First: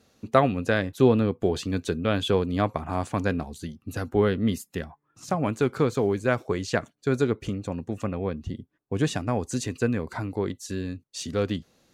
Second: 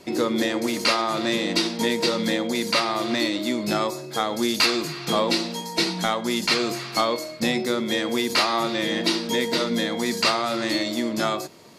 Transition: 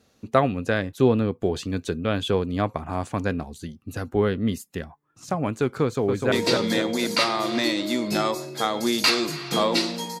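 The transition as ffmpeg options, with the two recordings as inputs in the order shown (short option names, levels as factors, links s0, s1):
-filter_complex "[0:a]apad=whole_dur=10.2,atrim=end=10.2,atrim=end=6.322[s0];[1:a]atrim=start=1.878:end=5.76[s1];[s0][s1]acrossfade=d=0.004:c1=hsin:c2=hsin,asplit=2[s2][s3];[s3]afade=t=in:st=5.83:d=0.01,afade=t=out:st=6.32:d=0.01,aecho=0:1:250|500|750|1000|1250|1500|1750:0.668344|0.334172|0.167086|0.083543|0.0417715|0.0208857|0.0104429[s4];[s2][s4]amix=inputs=2:normalize=0"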